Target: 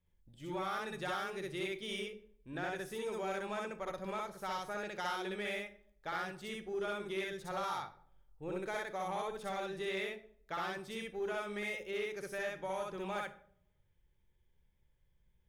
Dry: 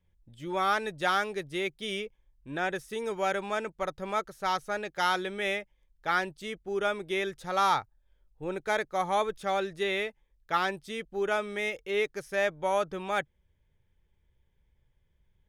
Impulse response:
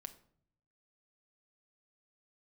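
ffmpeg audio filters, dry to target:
-filter_complex "[0:a]acompressor=threshold=-29dB:ratio=6,asplit=2[link_01][link_02];[1:a]atrim=start_sample=2205,highshelf=frequency=9700:gain=8,adelay=63[link_03];[link_02][link_03]afir=irnorm=-1:irlink=0,volume=5dB[link_04];[link_01][link_04]amix=inputs=2:normalize=0,asoftclip=type=tanh:threshold=-21.5dB,volume=-7dB"

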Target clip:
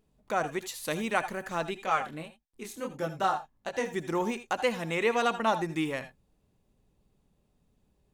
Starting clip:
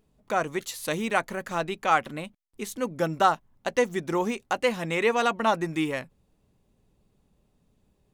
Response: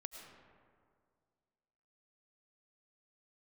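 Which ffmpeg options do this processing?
-filter_complex "[0:a]asettb=1/sr,asplit=3[link_01][link_02][link_03];[link_01]atrim=end=1.794[link_04];[link_02]atrim=start=1.79:end=3.94,asetpts=PTS-STARTPTS,afade=type=in:duration=0.004:curve=qsin,afade=type=out:start_time=2.146:duration=0.004:curve=qsin,flanger=delay=19.5:depth=7.8:speed=1.6[link_05];[link_03]atrim=start=3.936[link_06];[link_04][link_05]acrossfade=duration=0.004:curve1=hsin:curve2=qsin[link_07];[link_07][link_06]acrossfade=duration=0.004:curve1=qsin:curve2=hsin[link_08];[1:a]atrim=start_sample=2205,afade=type=out:start_time=0.16:duration=0.01,atrim=end_sample=7497,asetrate=57330,aresample=44100[link_09];[link_08][link_09]afir=irnorm=-1:irlink=0,volume=4.5dB"

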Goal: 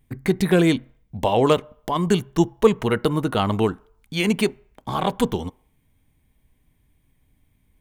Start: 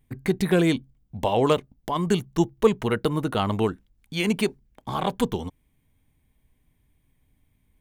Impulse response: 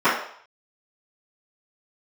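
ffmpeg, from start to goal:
-filter_complex "[0:a]asplit=2[link_01][link_02];[1:a]atrim=start_sample=2205[link_03];[link_02][link_03]afir=irnorm=-1:irlink=0,volume=-44dB[link_04];[link_01][link_04]amix=inputs=2:normalize=0,volume=3dB"

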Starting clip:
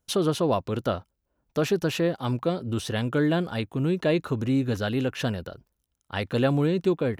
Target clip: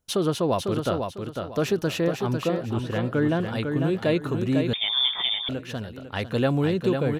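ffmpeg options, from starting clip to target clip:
ffmpeg -i in.wav -filter_complex "[0:a]asettb=1/sr,asplit=3[link_01][link_02][link_03];[link_01]atrim=end=2.044[link_04];[link_02]atrim=start=2.04:end=3.4,asetpts=PTS-STARTPTS,afade=type=in:duration=0.004:curve=qsin,afade=type=out:start_time=1.356:duration=0.004:curve=qsin,acrossover=split=2800[link_05][link_06];[link_06]acompressor=threshold=-53dB:ratio=4:attack=1:release=60[link_07];[link_05][link_07]amix=inputs=2:normalize=0[link_08];[link_03]atrim=start=3.396[link_09];[link_04][link_08]acrossfade=duration=0.004:curve1=hsin:curve2=qsin[link_10];[link_10][link_09]acrossfade=duration=0.004:curve1=qsin:curve2=hsin,aecho=1:1:500|1000|1500|2000:0.531|0.154|0.0446|0.0129,asettb=1/sr,asplit=3[link_11][link_12][link_13];[link_11]atrim=end=4.734[link_14];[link_12]atrim=start=4.73:end=5.49,asetpts=PTS-STARTPTS,afade=type=in:duration=0.004:curve=qsin,afade=type=out:start_time=0.756:duration=0.004:curve=qsin,lowpass=frequency=3100:width_type=q:width=0.5098,lowpass=frequency=3100:width_type=q:width=0.6013,lowpass=frequency=3100:width_type=q:width=0.9,lowpass=frequency=3100:width_type=q:width=2.563,afreqshift=-3700[link_15];[link_13]atrim=start=5.486[link_16];[link_14][link_15]acrossfade=duration=0.004:curve1=hsin:curve2=qsin[link_17];[link_17][link_16]acrossfade=duration=0.004:curve1=qsin:curve2=hsin" out.wav

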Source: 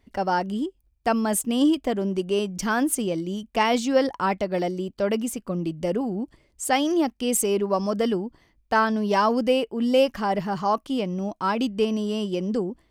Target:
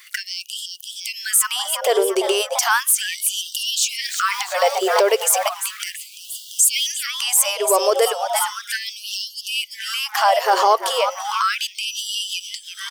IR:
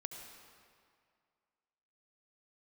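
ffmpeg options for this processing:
-filter_complex "[0:a]asplit=5[link_01][link_02][link_03][link_04][link_05];[link_02]adelay=341,afreqshift=150,volume=-14.5dB[link_06];[link_03]adelay=682,afreqshift=300,volume=-21.4dB[link_07];[link_04]adelay=1023,afreqshift=450,volume=-28.4dB[link_08];[link_05]adelay=1364,afreqshift=600,volume=-35.3dB[link_09];[link_01][link_06][link_07][link_08][link_09]amix=inputs=5:normalize=0,acompressor=threshold=-31dB:ratio=12,highshelf=frequency=4600:gain=9,asettb=1/sr,asplit=3[link_10][link_11][link_12];[link_10]atrim=end=4.044[link_13];[link_11]atrim=start=4.04:end=6.87,asetpts=PTS-STARTPTS,afade=type=in:duration=0.004:curve=qsin,afade=type=out:start_time=2.826:duration=0.004:curve=qsin,aeval=exprs='val(0)*gte(abs(val(0)),0.00266)':channel_layout=same[link_14];[link_12]atrim=start=6.866[link_15];[link_13][link_14]acrossfade=duration=0.004:curve1=hsin:curve2=qsin[link_16];[link_16][link_15]acrossfade=duration=0.004:curve1=qsin:curve2=hsin,highshelf=frequency=10000:gain=4,alimiter=level_in=28dB:limit=-1dB:release=50:level=0:latency=1,afftfilt=real='re*gte(b*sr/1024,360*pow(2800/360,0.5+0.5*sin(2*PI*0.35*pts/sr)))':imag='im*gte(b*sr/1024,360*pow(2800/360,0.5+0.5*sin(2*PI*0.35*pts/sr)))':win_size=1024:overlap=0.75,volume=-4.5dB"

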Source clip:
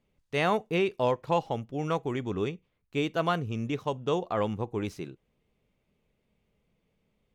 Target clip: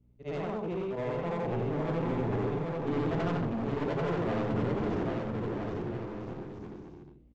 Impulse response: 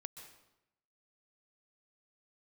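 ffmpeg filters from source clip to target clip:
-filter_complex "[0:a]afftfilt=real='re':imag='-im':win_size=8192:overlap=0.75,tiltshelf=frequency=970:gain=9.5,bandreject=frequency=137.9:width_type=h:width=4,bandreject=frequency=275.8:width_type=h:width=4,bandreject=frequency=413.7:width_type=h:width=4,bandreject=frequency=551.6:width_type=h:width=4,bandreject=frequency=689.5:width_type=h:width=4,bandreject=frequency=827.4:width_type=h:width=4,acompressor=threshold=-29dB:ratio=5,aeval=exprs='val(0)+0.000891*(sin(2*PI*60*n/s)+sin(2*PI*2*60*n/s)/2+sin(2*PI*3*60*n/s)/3+sin(2*PI*4*60*n/s)/4+sin(2*PI*5*60*n/s)/5)':channel_layout=same,dynaudnorm=framelen=310:gausssize=11:maxgain=7.5dB,aresample=16000,asoftclip=type=hard:threshold=-30dB,aresample=44100,asplit=2[link_01][link_02];[link_02]adelay=42,volume=-11dB[link_03];[link_01][link_03]amix=inputs=2:normalize=0,aecho=1:1:790|1304|1637|1854|1995:0.631|0.398|0.251|0.158|0.1,adynamicequalizer=threshold=0.00158:dfrequency=4200:dqfactor=0.7:tfrequency=4200:tqfactor=0.7:attack=5:release=100:ratio=0.375:range=3:mode=cutabove:tftype=highshelf,volume=-1dB"

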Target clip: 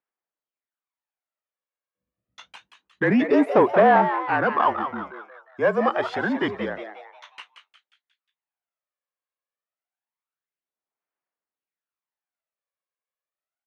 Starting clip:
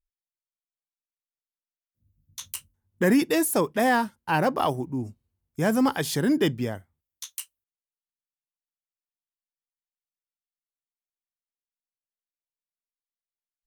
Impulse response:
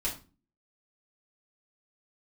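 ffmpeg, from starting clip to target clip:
-filter_complex "[0:a]aphaser=in_gain=1:out_gain=1:delay=1.8:decay=0.58:speed=0.27:type=sinusoidal,afreqshift=-36,asplit=2[link_01][link_02];[link_02]highpass=frequency=720:poles=1,volume=17dB,asoftclip=type=tanh:threshold=-3.5dB[link_03];[link_01][link_03]amix=inputs=2:normalize=0,lowpass=frequency=1400:poles=1,volume=-6dB,highpass=190,lowpass=2400,asplit=2[link_04][link_05];[link_05]asplit=5[link_06][link_07][link_08][link_09][link_10];[link_06]adelay=179,afreqshift=140,volume=-9dB[link_11];[link_07]adelay=358,afreqshift=280,volume=-16.1dB[link_12];[link_08]adelay=537,afreqshift=420,volume=-23.3dB[link_13];[link_09]adelay=716,afreqshift=560,volume=-30.4dB[link_14];[link_10]adelay=895,afreqshift=700,volume=-37.5dB[link_15];[link_11][link_12][link_13][link_14][link_15]amix=inputs=5:normalize=0[link_16];[link_04][link_16]amix=inputs=2:normalize=0,volume=-2.5dB"

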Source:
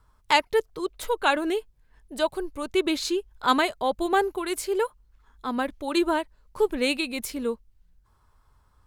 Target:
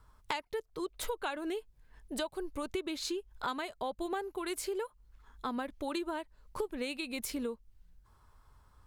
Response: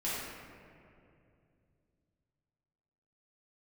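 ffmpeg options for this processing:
-af "acompressor=threshold=-33dB:ratio=12"

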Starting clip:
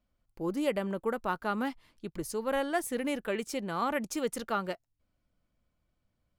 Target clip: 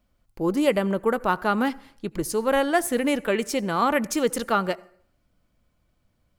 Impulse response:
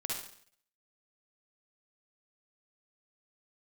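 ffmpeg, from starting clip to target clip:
-filter_complex "[0:a]asplit=2[link_01][link_02];[link_02]equalizer=frequency=3500:width=2.9:gain=-13[link_03];[1:a]atrim=start_sample=2205,adelay=21[link_04];[link_03][link_04]afir=irnorm=-1:irlink=0,volume=-21.5dB[link_05];[link_01][link_05]amix=inputs=2:normalize=0,volume=9dB"

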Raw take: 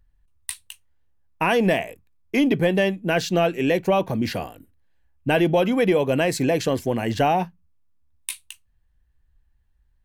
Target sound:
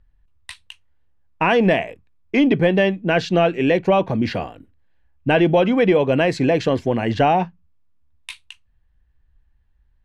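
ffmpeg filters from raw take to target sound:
ffmpeg -i in.wav -af "lowpass=3800,volume=3.5dB" out.wav

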